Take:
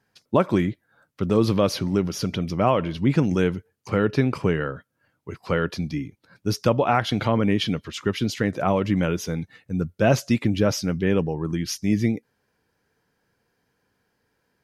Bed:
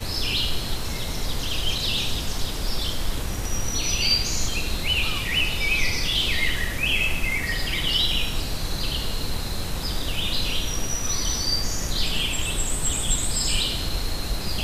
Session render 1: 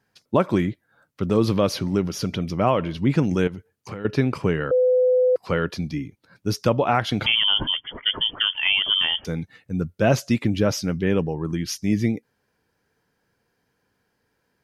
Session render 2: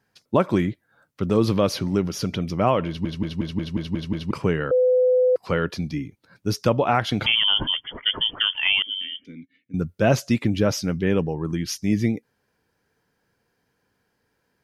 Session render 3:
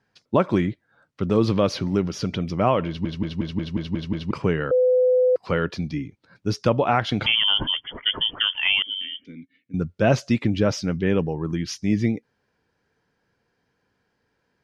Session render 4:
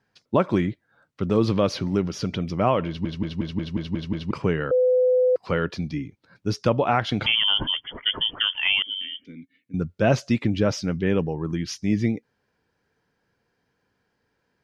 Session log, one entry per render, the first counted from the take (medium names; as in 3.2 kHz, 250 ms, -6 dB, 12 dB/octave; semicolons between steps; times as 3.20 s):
3.47–4.05 s: compression 16:1, threshold -28 dBFS; 4.71–5.36 s: bleep 505 Hz -14.5 dBFS; 7.26–9.25 s: frequency inversion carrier 3.3 kHz
2.87 s: stutter in place 0.18 s, 8 plays; 8.82–9.74 s: vowel filter i
low-pass 5.7 kHz 12 dB/octave
trim -1 dB